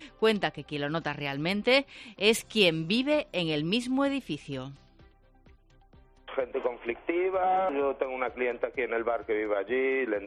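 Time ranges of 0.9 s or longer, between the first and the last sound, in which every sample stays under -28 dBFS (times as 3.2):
4.62–6.38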